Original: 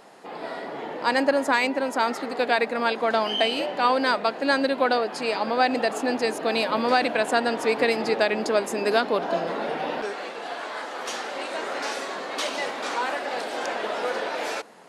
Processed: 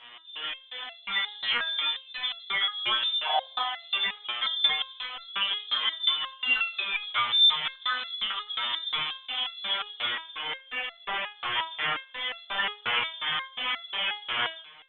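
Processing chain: in parallel at -7.5 dB: one-sided clip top -22 dBFS; on the sum: painted sound rise, 5.6–7.01, 530–1500 Hz -17 dBFS; LFO low-pass square 2.8 Hz 250–3000 Hz; inverted band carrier 3800 Hz; on a send: band-limited delay 82 ms, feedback 42%, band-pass 960 Hz, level -19 dB; on the sum: limiter -13 dBFS, peak gain reduction 11 dB; bell 1300 Hz +7.5 dB 2.6 oct; stepped resonator 5.6 Hz 120–680 Hz; gain +3 dB

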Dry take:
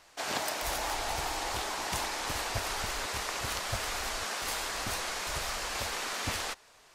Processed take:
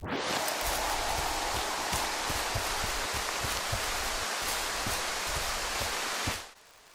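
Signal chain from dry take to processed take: tape start at the beginning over 0.35 s; crackle 110/s -44 dBFS; ending taper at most 100 dB/s; gain +2.5 dB

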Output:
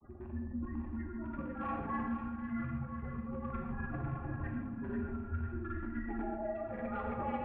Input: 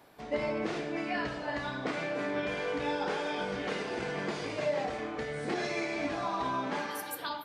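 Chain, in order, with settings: spectral gate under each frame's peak -10 dB strong; low shelf 280 Hz +5 dB; negative-ratio compressor -40 dBFS, ratio -1; rotary speaker horn 1 Hz, later 7 Hz, at 2.77; grains 0.1 s, grains 20/s, pitch spread up and down by 0 st; LFO low-pass sine 3.2 Hz 880–1800 Hz; overloaded stage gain 35 dB; notch comb 830 Hz; mistuned SSB -360 Hz 360–2900 Hz; on a send: split-band echo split 1200 Hz, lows 0.212 s, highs 0.498 s, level -7 dB; on the sum: non-linear reverb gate 0.17 s flat, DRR 1.5 dB; gain +2.5 dB

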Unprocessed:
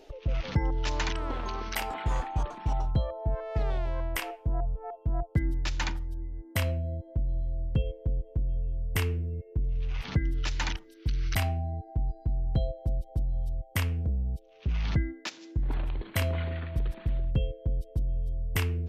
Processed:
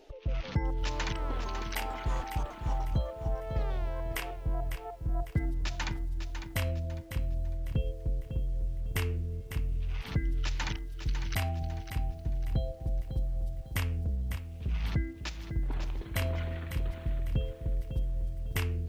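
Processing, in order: lo-fi delay 0.551 s, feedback 35%, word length 9-bit, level -9 dB; gain -3.5 dB

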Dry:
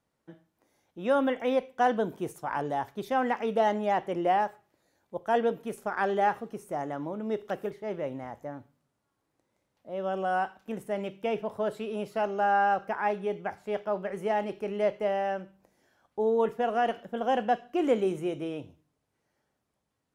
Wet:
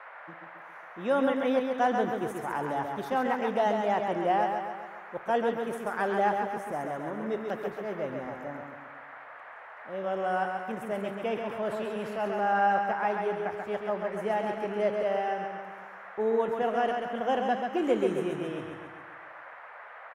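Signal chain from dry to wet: feedback echo 0.135 s, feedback 54%, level -5 dB; band noise 540–1900 Hz -45 dBFS; 11.34–12.74 transient shaper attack -4 dB, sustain +3 dB; gain -1.5 dB

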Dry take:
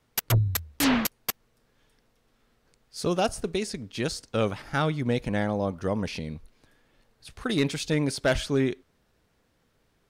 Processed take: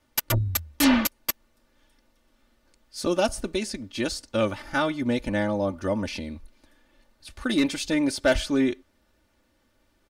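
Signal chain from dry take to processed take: comb 3.4 ms, depth 77%

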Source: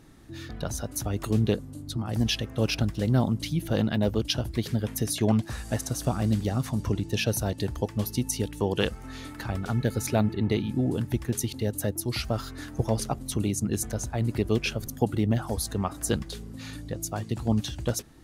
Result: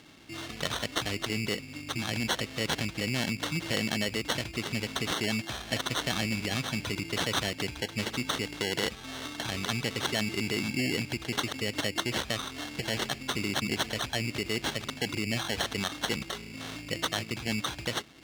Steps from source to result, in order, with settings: sample-and-hold 18×; limiter -22 dBFS, peak gain reduction 10.5 dB; weighting filter D

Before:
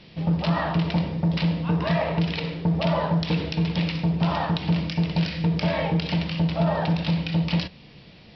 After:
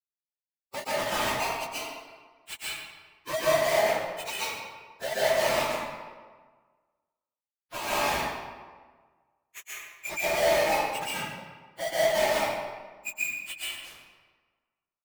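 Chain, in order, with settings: spectral gate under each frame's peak -10 dB strong; HPF 810 Hz 12 dB/oct; reverb removal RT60 0.53 s; high shelf 3900 Hz -3.5 dB; comb 3.3 ms, depth 34%; dynamic EQ 1200 Hz, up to -6 dB, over -47 dBFS, Q 2.9; compressor 16:1, threshold -34 dBFS, peak gain reduction 8.5 dB; limiter -35 dBFS, peak gain reduction 10.5 dB; companded quantiser 2-bit; plain phase-vocoder stretch 1.8×; reverb RT60 1.5 s, pre-delay 0.117 s, DRR -9 dB; gain +2 dB

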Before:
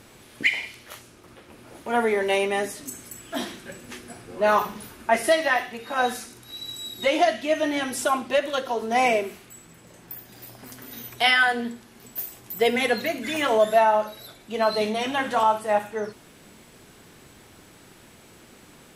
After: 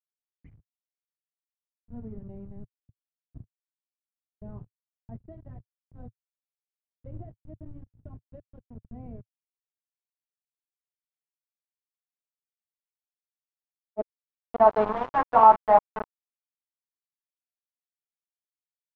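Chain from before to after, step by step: sample gate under -22 dBFS; low-pass sweep 110 Hz -> 1000 Hz, 12.44–14.81; spectral freeze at 10.7, 3.28 s

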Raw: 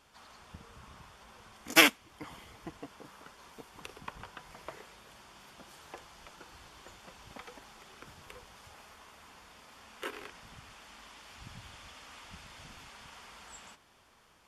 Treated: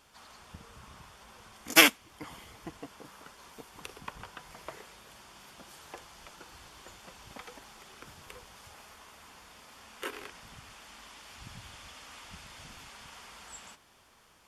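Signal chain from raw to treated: high shelf 5700 Hz +5 dB; gain +1 dB

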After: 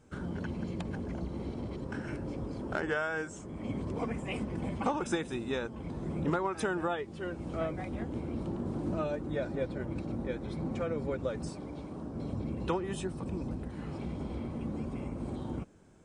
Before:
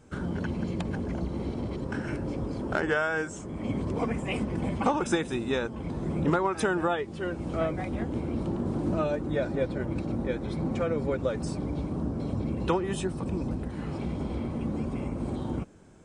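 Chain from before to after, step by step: 11.49–12.14 low shelf 220 Hz -9.5 dB; gain -5.5 dB

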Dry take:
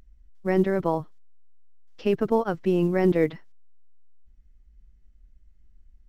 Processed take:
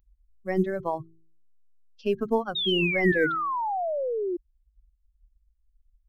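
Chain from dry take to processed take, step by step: per-bin expansion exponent 2; de-hum 54.44 Hz, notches 7; painted sound fall, 2.55–4.37, 340–3800 Hz -28 dBFS

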